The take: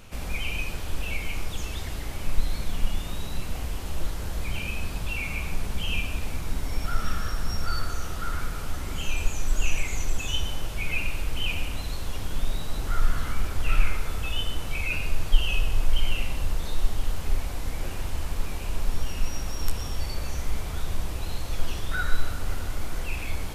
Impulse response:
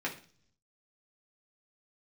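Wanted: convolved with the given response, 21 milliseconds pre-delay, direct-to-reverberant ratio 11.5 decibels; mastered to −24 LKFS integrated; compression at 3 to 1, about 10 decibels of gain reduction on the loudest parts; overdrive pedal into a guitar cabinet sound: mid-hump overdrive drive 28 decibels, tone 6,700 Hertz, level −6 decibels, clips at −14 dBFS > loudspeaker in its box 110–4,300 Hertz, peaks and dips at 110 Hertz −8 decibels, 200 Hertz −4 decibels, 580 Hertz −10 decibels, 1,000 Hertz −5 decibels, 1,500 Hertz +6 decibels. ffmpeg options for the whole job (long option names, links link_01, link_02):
-filter_complex "[0:a]acompressor=threshold=-23dB:ratio=3,asplit=2[link_01][link_02];[1:a]atrim=start_sample=2205,adelay=21[link_03];[link_02][link_03]afir=irnorm=-1:irlink=0,volume=-17dB[link_04];[link_01][link_04]amix=inputs=2:normalize=0,asplit=2[link_05][link_06];[link_06]highpass=frequency=720:poles=1,volume=28dB,asoftclip=type=tanh:threshold=-14dB[link_07];[link_05][link_07]amix=inputs=2:normalize=0,lowpass=frequency=6700:poles=1,volume=-6dB,highpass=110,equalizer=frequency=110:width_type=q:width=4:gain=-8,equalizer=frequency=200:width_type=q:width=4:gain=-4,equalizer=frequency=580:width_type=q:width=4:gain=-10,equalizer=frequency=1000:width_type=q:width=4:gain=-5,equalizer=frequency=1500:width_type=q:width=4:gain=6,lowpass=frequency=4300:width=0.5412,lowpass=frequency=4300:width=1.3066,volume=-1.5dB"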